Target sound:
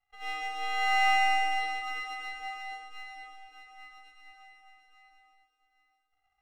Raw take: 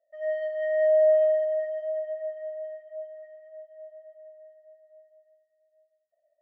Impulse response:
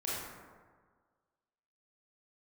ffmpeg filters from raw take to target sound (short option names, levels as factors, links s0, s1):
-filter_complex "[0:a]aeval=exprs='val(0)*sin(2*PI*1400*n/s)':c=same,aeval=exprs='max(val(0),0)':c=same,asplit=2[s0][s1];[1:a]atrim=start_sample=2205,asetrate=22050,aresample=44100[s2];[s1][s2]afir=irnorm=-1:irlink=0,volume=0.562[s3];[s0][s3]amix=inputs=2:normalize=0,volume=0.562"